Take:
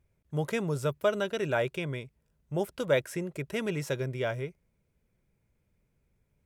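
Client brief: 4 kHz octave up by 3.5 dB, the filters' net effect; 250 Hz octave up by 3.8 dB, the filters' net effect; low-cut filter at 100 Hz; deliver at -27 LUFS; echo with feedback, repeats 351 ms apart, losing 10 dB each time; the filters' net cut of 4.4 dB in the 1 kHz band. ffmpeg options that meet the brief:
-af "highpass=100,equalizer=f=250:t=o:g=6.5,equalizer=f=1000:t=o:g=-7.5,equalizer=f=4000:t=o:g=5,aecho=1:1:351|702|1053|1404:0.316|0.101|0.0324|0.0104,volume=1.58"

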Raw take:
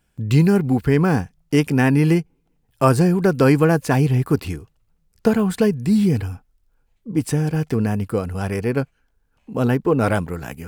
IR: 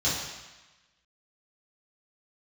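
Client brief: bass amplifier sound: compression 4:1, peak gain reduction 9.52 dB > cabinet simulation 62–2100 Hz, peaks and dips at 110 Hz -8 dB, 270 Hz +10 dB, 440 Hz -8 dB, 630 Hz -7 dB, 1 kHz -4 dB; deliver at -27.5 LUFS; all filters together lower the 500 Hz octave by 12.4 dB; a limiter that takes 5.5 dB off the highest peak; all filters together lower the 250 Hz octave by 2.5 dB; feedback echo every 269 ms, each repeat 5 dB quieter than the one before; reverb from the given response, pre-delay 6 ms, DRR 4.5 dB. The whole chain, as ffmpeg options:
-filter_complex "[0:a]equalizer=f=250:t=o:g=-6.5,equalizer=f=500:t=o:g=-7.5,alimiter=limit=0.224:level=0:latency=1,aecho=1:1:269|538|807|1076|1345|1614|1883:0.562|0.315|0.176|0.0988|0.0553|0.031|0.0173,asplit=2[s0][s1];[1:a]atrim=start_sample=2205,adelay=6[s2];[s1][s2]afir=irnorm=-1:irlink=0,volume=0.168[s3];[s0][s3]amix=inputs=2:normalize=0,acompressor=threshold=0.0794:ratio=4,highpass=f=62:w=0.5412,highpass=f=62:w=1.3066,equalizer=f=110:t=q:w=4:g=-8,equalizer=f=270:t=q:w=4:g=10,equalizer=f=440:t=q:w=4:g=-8,equalizer=f=630:t=q:w=4:g=-7,equalizer=f=1000:t=q:w=4:g=-4,lowpass=f=2100:w=0.5412,lowpass=f=2100:w=1.3066,volume=0.841"

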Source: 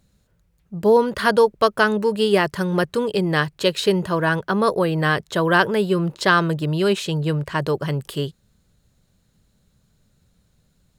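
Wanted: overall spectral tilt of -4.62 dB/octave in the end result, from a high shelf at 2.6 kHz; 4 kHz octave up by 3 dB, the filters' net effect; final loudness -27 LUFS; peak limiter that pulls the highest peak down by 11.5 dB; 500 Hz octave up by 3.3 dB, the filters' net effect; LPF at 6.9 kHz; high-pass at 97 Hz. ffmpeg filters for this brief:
-af "highpass=97,lowpass=6900,equalizer=f=500:t=o:g=4,highshelf=f=2600:g=-4,equalizer=f=4000:t=o:g=7.5,volume=0.562,alimiter=limit=0.141:level=0:latency=1"

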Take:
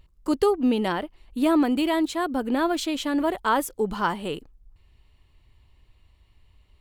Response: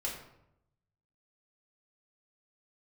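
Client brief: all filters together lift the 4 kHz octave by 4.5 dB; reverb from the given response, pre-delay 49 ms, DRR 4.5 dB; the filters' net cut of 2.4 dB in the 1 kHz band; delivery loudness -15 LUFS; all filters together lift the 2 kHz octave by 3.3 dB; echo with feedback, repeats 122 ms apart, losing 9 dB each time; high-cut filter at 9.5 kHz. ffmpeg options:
-filter_complex "[0:a]lowpass=9500,equalizer=f=1000:t=o:g=-4.5,equalizer=f=2000:t=o:g=5.5,equalizer=f=4000:t=o:g=4,aecho=1:1:122|244|366|488:0.355|0.124|0.0435|0.0152,asplit=2[s0][s1];[1:a]atrim=start_sample=2205,adelay=49[s2];[s1][s2]afir=irnorm=-1:irlink=0,volume=0.447[s3];[s0][s3]amix=inputs=2:normalize=0,volume=2.51"

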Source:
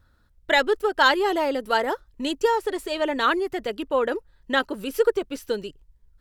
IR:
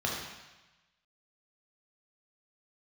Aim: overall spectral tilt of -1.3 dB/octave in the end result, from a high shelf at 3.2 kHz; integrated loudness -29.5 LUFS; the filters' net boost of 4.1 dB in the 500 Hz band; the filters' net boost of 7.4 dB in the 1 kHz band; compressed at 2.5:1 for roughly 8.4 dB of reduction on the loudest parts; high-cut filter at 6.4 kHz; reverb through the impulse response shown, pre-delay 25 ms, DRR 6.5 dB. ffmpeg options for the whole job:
-filter_complex "[0:a]lowpass=6400,equalizer=f=500:t=o:g=3,equalizer=f=1000:t=o:g=8.5,highshelf=f=3200:g=-4.5,acompressor=threshold=0.0794:ratio=2.5,asplit=2[s0][s1];[1:a]atrim=start_sample=2205,adelay=25[s2];[s1][s2]afir=irnorm=-1:irlink=0,volume=0.188[s3];[s0][s3]amix=inputs=2:normalize=0,volume=0.562"

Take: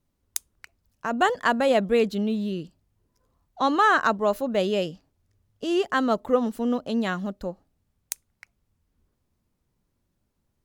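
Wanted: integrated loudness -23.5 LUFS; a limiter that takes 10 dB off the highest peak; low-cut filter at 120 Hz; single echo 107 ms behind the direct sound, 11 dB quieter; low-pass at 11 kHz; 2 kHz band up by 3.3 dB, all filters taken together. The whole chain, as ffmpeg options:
-af "highpass=120,lowpass=11000,equalizer=f=2000:t=o:g=4.5,alimiter=limit=0.168:level=0:latency=1,aecho=1:1:107:0.282,volume=1.41"

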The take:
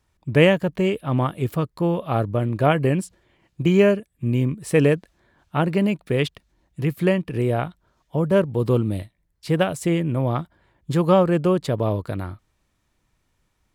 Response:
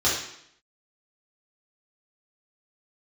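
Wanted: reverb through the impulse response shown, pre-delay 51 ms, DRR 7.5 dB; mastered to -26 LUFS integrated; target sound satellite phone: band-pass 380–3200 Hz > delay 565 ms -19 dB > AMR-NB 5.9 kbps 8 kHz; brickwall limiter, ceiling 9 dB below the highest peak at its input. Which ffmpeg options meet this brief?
-filter_complex "[0:a]alimiter=limit=0.282:level=0:latency=1,asplit=2[s0][s1];[1:a]atrim=start_sample=2205,adelay=51[s2];[s1][s2]afir=irnorm=-1:irlink=0,volume=0.0794[s3];[s0][s3]amix=inputs=2:normalize=0,highpass=380,lowpass=3200,aecho=1:1:565:0.112,volume=1.19" -ar 8000 -c:a libopencore_amrnb -b:a 5900

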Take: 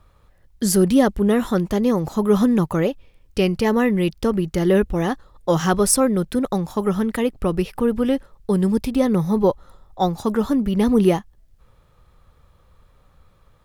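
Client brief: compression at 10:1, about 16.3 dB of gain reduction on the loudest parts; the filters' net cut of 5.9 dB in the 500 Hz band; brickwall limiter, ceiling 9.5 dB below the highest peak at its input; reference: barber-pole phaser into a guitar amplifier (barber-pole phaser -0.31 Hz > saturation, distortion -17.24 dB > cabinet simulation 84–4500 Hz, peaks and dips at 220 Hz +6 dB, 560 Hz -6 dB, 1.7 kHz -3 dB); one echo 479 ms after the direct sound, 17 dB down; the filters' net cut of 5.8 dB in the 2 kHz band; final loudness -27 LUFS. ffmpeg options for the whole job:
-filter_complex "[0:a]equalizer=f=500:t=o:g=-5.5,equalizer=f=2000:t=o:g=-5,acompressor=threshold=0.0316:ratio=10,alimiter=level_in=1.5:limit=0.0631:level=0:latency=1,volume=0.668,aecho=1:1:479:0.141,asplit=2[s0][s1];[s1]afreqshift=-0.31[s2];[s0][s2]amix=inputs=2:normalize=1,asoftclip=threshold=0.0237,highpass=84,equalizer=f=220:t=q:w=4:g=6,equalizer=f=560:t=q:w=4:g=-6,equalizer=f=1700:t=q:w=4:g=-3,lowpass=f=4500:w=0.5412,lowpass=f=4500:w=1.3066,volume=3.76"

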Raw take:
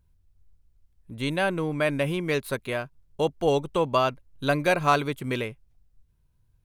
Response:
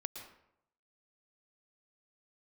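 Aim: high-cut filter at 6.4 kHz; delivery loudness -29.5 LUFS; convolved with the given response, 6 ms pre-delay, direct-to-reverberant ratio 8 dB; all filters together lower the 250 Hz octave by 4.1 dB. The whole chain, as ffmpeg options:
-filter_complex "[0:a]lowpass=6400,equalizer=f=250:t=o:g=-6,asplit=2[s0][s1];[1:a]atrim=start_sample=2205,adelay=6[s2];[s1][s2]afir=irnorm=-1:irlink=0,volume=0.473[s3];[s0][s3]amix=inputs=2:normalize=0,volume=0.708"

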